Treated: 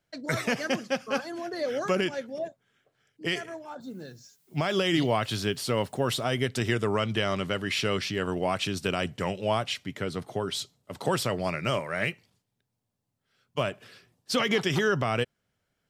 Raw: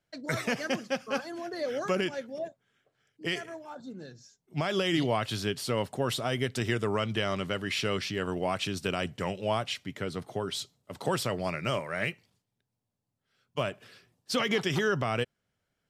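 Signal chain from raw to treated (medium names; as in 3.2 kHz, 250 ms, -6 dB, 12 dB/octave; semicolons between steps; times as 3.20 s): 3.80–6.23 s: added noise blue -71 dBFS; trim +2.5 dB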